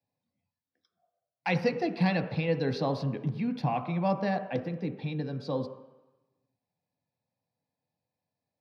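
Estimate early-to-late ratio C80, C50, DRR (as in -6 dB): 11.5 dB, 10.0 dB, 6.0 dB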